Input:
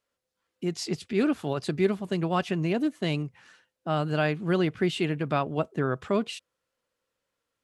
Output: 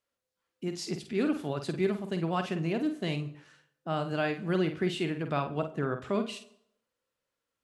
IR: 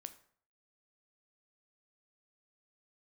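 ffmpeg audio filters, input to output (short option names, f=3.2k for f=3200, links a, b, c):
-filter_complex "[0:a]asplit=2[a][b];[1:a]atrim=start_sample=2205,asetrate=31311,aresample=44100,adelay=49[c];[b][c]afir=irnorm=-1:irlink=0,volume=-4dB[d];[a][d]amix=inputs=2:normalize=0,volume=-4.5dB"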